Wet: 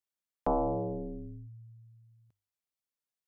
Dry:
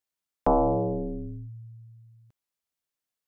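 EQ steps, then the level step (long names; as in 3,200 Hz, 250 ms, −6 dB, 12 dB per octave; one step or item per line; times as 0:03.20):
mains-hum notches 50/100 Hz
−7.0 dB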